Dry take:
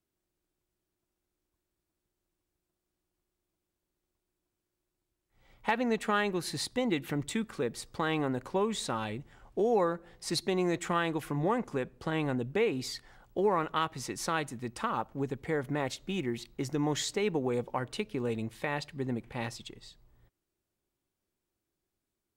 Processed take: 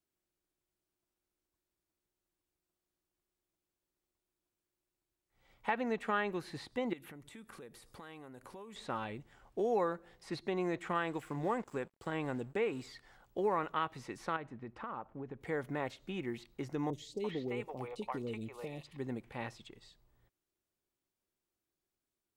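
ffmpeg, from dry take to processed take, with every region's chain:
ffmpeg -i in.wav -filter_complex "[0:a]asettb=1/sr,asplit=3[link_01][link_02][link_03];[link_01]atrim=end=6.934[link_04];[link_02]atrim=start=6.93:end=8.76,asetpts=PTS-STARTPTS,afade=type=in:duration=0.004:curve=qsin,afade=type=out:start_time=1.826:duration=0.004:curve=qsin,acompressor=threshold=-42dB:ratio=8:attack=3.2:release=140:knee=1:detection=peak,equalizer=frequency=11000:width_type=o:width=0.73:gain=14.5[link_05];[link_03]atrim=start=8.756[link_06];[link_04][link_05]acrossfade=duration=0.004:curve1=hsin:curve2=qsin[link_07];[link_07][link_06]acrossfade=duration=0.004:curve1=qsin:curve2=hsin,asettb=1/sr,asplit=3[link_08][link_09][link_10];[link_08]atrim=end=10.954[link_11];[link_09]atrim=start=10.95:end=12.87,asetpts=PTS-STARTPTS,afade=type=in:duration=0.004:curve=qsin,afade=type=out:start_time=1.916:duration=0.004:curve=qsin,equalizer=frequency=7700:width=6:gain=14,aeval=exprs='sgn(val(0))*max(abs(val(0))-0.00224,0)':channel_layout=same[link_12];[link_10]atrim=start=12.866[link_13];[link_11][link_12]acrossfade=duration=0.004:curve1=hsin:curve2=qsin[link_14];[link_14][link_13]acrossfade=duration=0.004:curve1=qsin:curve2=hsin,asettb=1/sr,asplit=3[link_15][link_16][link_17];[link_15]atrim=end=14.364[link_18];[link_16]atrim=start=14.36:end=15.41,asetpts=PTS-STARTPTS,afade=type=in:duration=0.004:curve=qsin,afade=type=out:start_time=1.046:duration=0.004:curve=qsin,lowpass=1800,acompressor=threshold=-34dB:ratio=4:attack=3.2:release=140:knee=1:detection=peak[link_19];[link_17]atrim=start=15.406[link_20];[link_18][link_19]acrossfade=duration=0.004:curve1=hsin:curve2=qsin[link_21];[link_21][link_20]acrossfade=duration=0.004:curve1=qsin:curve2=hsin,asettb=1/sr,asplit=3[link_22][link_23][link_24];[link_22]atrim=end=16.904[link_25];[link_23]atrim=start=16.9:end=18.97,asetpts=PTS-STARTPTS,afade=type=in:duration=0.004:curve=qsin,afade=type=out:start_time=2.066:duration=0.004:curve=qsin,equalizer=frequency=1600:width_type=o:width=0.22:gain=-13,asoftclip=type=hard:threshold=-22dB,acrossover=split=550|3100[link_26][link_27][link_28];[link_28]adelay=30[link_29];[link_27]adelay=340[link_30];[link_26][link_30][link_29]amix=inputs=3:normalize=0,atrim=end_sample=91287[link_31];[link_24]atrim=start=18.966[link_32];[link_25][link_31]acrossfade=duration=0.004:curve1=hsin:curve2=qsin[link_33];[link_33][link_32]acrossfade=duration=0.004:curve1=qsin:curve2=hsin,acrossover=split=2900[link_34][link_35];[link_35]acompressor=threshold=-55dB:ratio=4:attack=1:release=60[link_36];[link_34][link_36]amix=inputs=2:normalize=0,lowshelf=frequency=290:gain=-5,volume=-3.5dB" out.wav

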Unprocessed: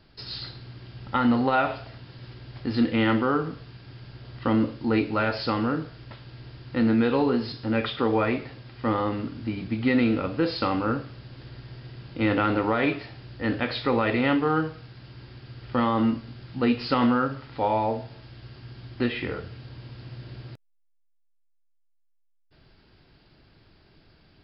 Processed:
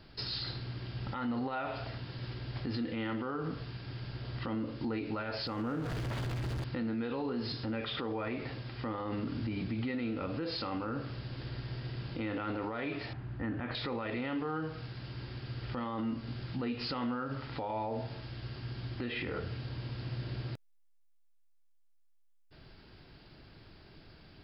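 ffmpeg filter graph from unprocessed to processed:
ffmpeg -i in.wav -filter_complex "[0:a]asettb=1/sr,asplit=3[link_01][link_02][link_03];[link_01]atrim=end=5.474[link_04];[link_02]atrim=start=5.47:end=6.64,asetpts=PTS-STARTPTS,afade=type=in:duration=0.004:curve=qsin,afade=type=out:start_time=1.166:duration=0.004:curve=qsin,aeval=exprs='val(0)+0.5*0.0237*sgn(val(0))':channel_layout=same,lowpass=frequency=2000:poles=1,acompressor=threshold=-35dB:ratio=4:attack=3.2:release=140:knee=1:detection=peak[link_05];[link_03]atrim=start=6.636[link_06];[link_04][link_05]acrossfade=duration=0.004:curve1=hsin:curve2=qsin[link_07];[link_07][link_06]acrossfade=duration=0.004:curve1=qsin:curve2=hsin,asettb=1/sr,asplit=3[link_08][link_09][link_10];[link_08]atrim=end=13.134[link_11];[link_09]atrim=start=13.13:end=13.75,asetpts=PTS-STARTPTS,afade=type=in:duration=0.004:curve=qsin,afade=type=out:start_time=0.616:duration=0.004:curve=qsin,lowpass=1500,equalizer=frequency=500:width=2.3:gain=-9.5[link_12];[link_10]atrim=start=13.746[link_13];[link_11][link_12]acrossfade=duration=0.004:curve1=hsin:curve2=qsin[link_14];[link_14][link_13]acrossfade=duration=0.004:curve1=qsin:curve2=hsin,acompressor=threshold=-30dB:ratio=4,alimiter=level_in=6dB:limit=-24dB:level=0:latency=1:release=59,volume=-6dB,volume=2dB" out.wav

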